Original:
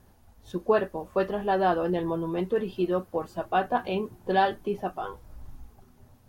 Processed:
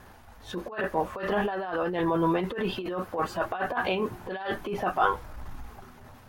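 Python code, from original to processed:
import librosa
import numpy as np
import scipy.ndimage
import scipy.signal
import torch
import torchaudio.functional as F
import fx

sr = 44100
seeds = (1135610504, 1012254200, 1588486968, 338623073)

y = fx.over_compress(x, sr, threshold_db=-30.0, ratio=-0.5)
y = fx.transient(y, sr, attack_db=-6, sustain_db=2)
y = fx.peak_eq(y, sr, hz=1600.0, db=11.5, octaves=2.7)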